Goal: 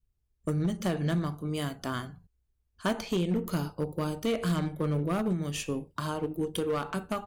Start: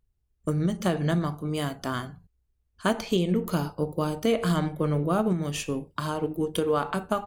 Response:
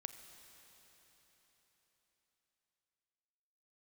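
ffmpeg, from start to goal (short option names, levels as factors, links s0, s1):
-af "volume=9.44,asoftclip=hard,volume=0.106,adynamicequalizer=threshold=0.01:dfrequency=770:dqfactor=0.96:tfrequency=770:tqfactor=0.96:attack=5:release=100:ratio=0.375:range=2.5:mode=cutabove:tftype=bell,volume=0.75"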